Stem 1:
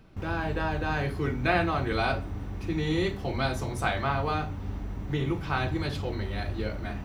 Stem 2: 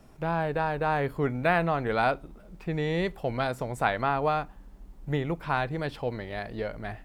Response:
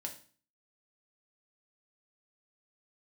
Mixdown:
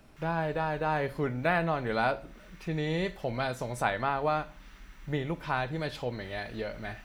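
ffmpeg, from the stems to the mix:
-filter_complex "[0:a]highpass=f=1.4k:w=0.5412,highpass=f=1.4k:w=1.3066,volume=-0.5dB[a];[1:a]volume=-5.5dB,asplit=3[b][c][d];[c]volume=-5.5dB[e];[d]apad=whole_len=310649[f];[a][f]sidechaincompress=threshold=-36dB:ratio=8:attack=7:release=373[g];[2:a]atrim=start_sample=2205[h];[e][h]afir=irnorm=-1:irlink=0[i];[g][b][i]amix=inputs=3:normalize=0"

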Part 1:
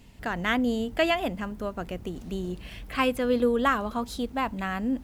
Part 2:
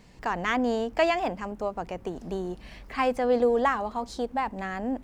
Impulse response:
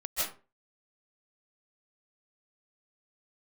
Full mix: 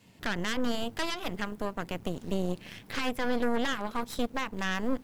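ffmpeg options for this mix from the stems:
-filter_complex "[0:a]adynamicequalizer=threshold=0.0126:dfrequency=270:dqfactor=0.7:tfrequency=270:tqfactor=0.7:attack=5:release=100:ratio=0.375:range=2.5:mode=cutabove:tftype=bell,alimiter=limit=-22.5dB:level=0:latency=1:release=235,volume=-3dB[a];[1:a]volume=-11.5dB[b];[a][b]amix=inputs=2:normalize=0,highpass=f=100:w=0.5412,highpass=f=100:w=1.3066,aeval=exprs='0.0944*(cos(1*acos(clip(val(0)/0.0944,-1,1)))-cos(1*PI/2))+0.0335*(cos(6*acos(clip(val(0)/0.0944,-1,1)))-cos(6*PI/2))':c=same"

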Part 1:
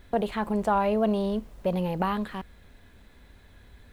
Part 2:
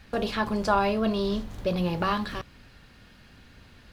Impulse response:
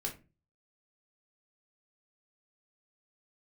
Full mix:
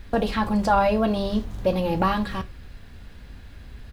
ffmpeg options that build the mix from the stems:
-filter_complex "[0:a]volume=2.5dB[a];[1:a]flanger=delay=9.3:depth=3.7:regen=-63:speed=0.53:shape=sinusoidal,highpass=42,adelay=0.8,volume=1dB,asplit=2[b][c];[c]volume=-7.5dB[d];[2:a]atrim=start_sample=2205[e];[d][e]afir=irnorm=-1:irlink=0[f];[a][b][f]amix=inputs=3:normalize=0,lowshelf=f=120:g=10"

